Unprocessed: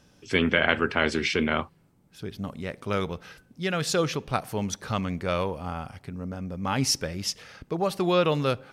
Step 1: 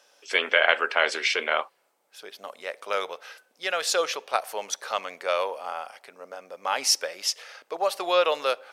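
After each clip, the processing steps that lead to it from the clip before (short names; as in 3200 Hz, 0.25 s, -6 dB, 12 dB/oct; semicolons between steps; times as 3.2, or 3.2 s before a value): Chebyshev high-pass 550 Hz, order 3; gain +3.5 dB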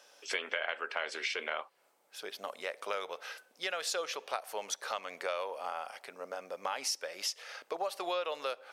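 compressor 4:1, threshold -34 dBFS, peak gain reduction 16.5 dB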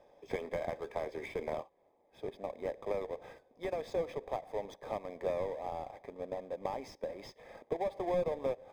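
half-waves squared off; running mean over 31 samples; gain +1 dB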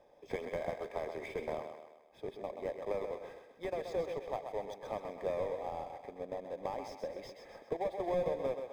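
thinning echo 0.129 s, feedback 49%, high-pass 210 Hz, level -7 dB; gain -1.5 dB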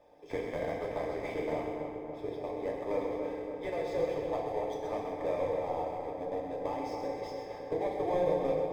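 median filter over 3 samples; darkening echo 0.283 s, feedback 68%, low-pass 1800 Hz, level -5.5 dB; FDN reverb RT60 1 s, low-frequency decay 1.2×, high-frequency decay 0.95×, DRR -1 dB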